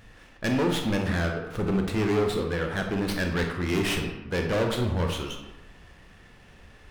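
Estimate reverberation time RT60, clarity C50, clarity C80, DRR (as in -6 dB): 1.1 s, 5.0 dB, 7.5 dB, 2.5 dB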